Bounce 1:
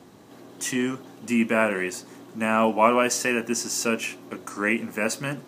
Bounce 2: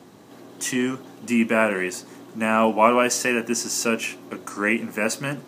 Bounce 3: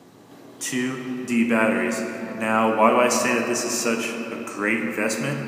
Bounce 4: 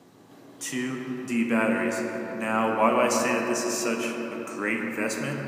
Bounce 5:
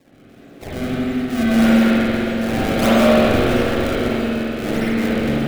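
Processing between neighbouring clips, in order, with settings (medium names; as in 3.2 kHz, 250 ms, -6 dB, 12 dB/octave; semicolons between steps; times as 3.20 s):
high-pass 84 Hz; trim +2 dB
simulated room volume 170 m³, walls hard, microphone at 0.32 m; trim -1.5 dB
bucket-brigade echo 172 ms, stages 2048, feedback 66%, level -8 dB; trim -5 dB
decimation with a swept rate 28×, swing 160% 1.6 Hz; peaking EQ 970 Hz -11 dB 0.44 oct; spring tank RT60 2.8 s, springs 44/57 ms, chirp 35 ms, DRR -9.5 dB; trim -1 dB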